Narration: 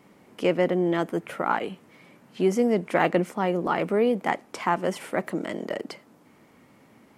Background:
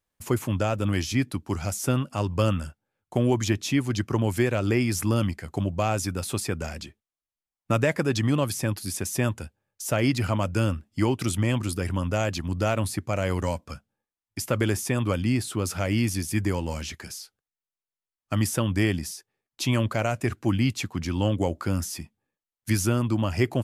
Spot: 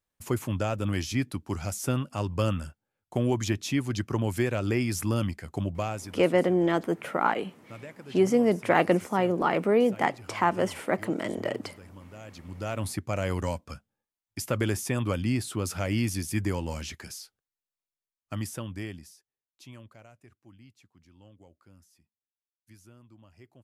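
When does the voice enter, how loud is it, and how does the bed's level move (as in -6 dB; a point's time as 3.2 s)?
5.75 s, 0.0 dB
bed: 5.75 s -3.5 dB
6.4 s -21 dB
12.17 s -21 dB
12.91 s -3 dB
17.85 s -3 dB
20.37 s -30.5 dB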